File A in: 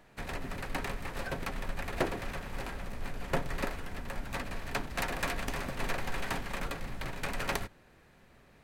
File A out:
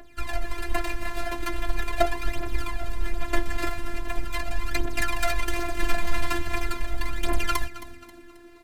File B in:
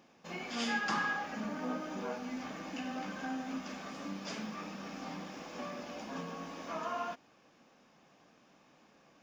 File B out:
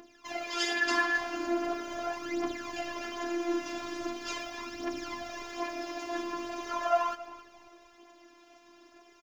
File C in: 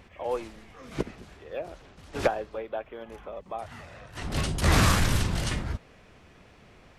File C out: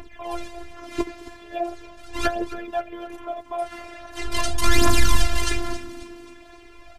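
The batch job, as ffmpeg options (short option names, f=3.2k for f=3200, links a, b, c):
-filter_complex "[0:a]aphaser=in_gain=1:out_gain=1:delay=4.5:decay=0.73:speed=0.41:type=triangular,asplit=5[a][b][c][d][e];[b]adelay=268,afreqshift=-93,volume=-15dB[f];[c]adelay=536,afreqshift=-186,volume=-21.9dB[g];[d]adelay=804,afreqshift=-279,volume=-28.9dB[h];[e]adelay=1072,afreqshift=-372,volume=-35.8dB[i];[a][f][g][h][i]amix=inputs=5:normalize=0,afftfilt=real='hypot(re,im)*cos(PI*b)':imag='0':win_size=512:overlap=0.75,alimiter=level_in=8dB:limit=-1dB:release=50:level=0:latency=1,volume=-1dB"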